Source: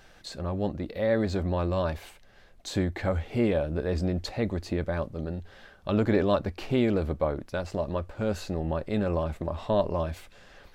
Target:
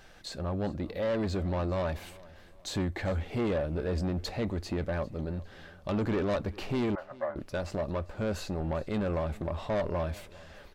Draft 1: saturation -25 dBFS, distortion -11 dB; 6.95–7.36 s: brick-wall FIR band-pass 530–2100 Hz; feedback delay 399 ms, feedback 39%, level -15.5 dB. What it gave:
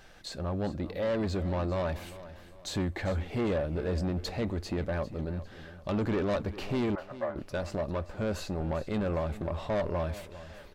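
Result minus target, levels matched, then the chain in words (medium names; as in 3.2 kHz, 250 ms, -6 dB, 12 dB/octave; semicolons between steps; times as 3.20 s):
echo-to-direct +6 dB
saturation -25 dBFS, distortion -11 dB; 6.95–7.36 s: brick-wall FIR band-pass 530–2100 Hz; feedback delay 399 ms, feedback 39%, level -21.5 dB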